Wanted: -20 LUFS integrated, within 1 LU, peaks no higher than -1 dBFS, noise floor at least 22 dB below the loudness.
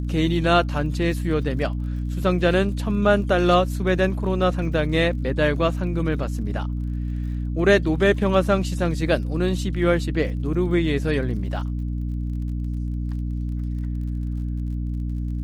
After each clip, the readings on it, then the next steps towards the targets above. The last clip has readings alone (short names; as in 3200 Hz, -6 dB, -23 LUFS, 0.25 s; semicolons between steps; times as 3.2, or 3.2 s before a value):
ticks 43/s; hum 60 Hz; harmonics up to 300 Hz; hum level -24 dBFS; loudness -23.0 LUFS; peak -4.0 dBFS; loudness target -20.0 LUFS
-> de-click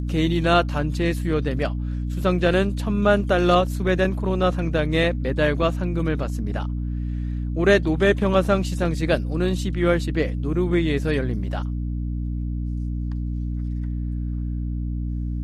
ticks 0.065/s; hum 60 Hz; harmonics up to 300 Hz; hum level -24 dBFS
-> notches 60/120/180/240/300 Hz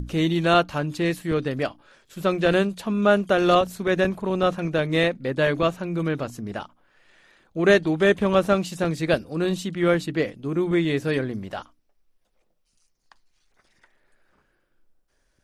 hum none; loudness -23.0 LUFS; peak -5.0 dBFS; loudness target -20.0 LUFS
-> gain +3 dB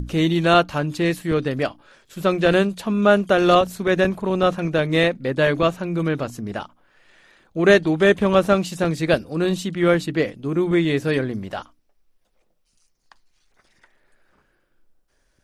loudness -20.0 LUFS; peak -2.0 dBFS; noise floor -66 dBFS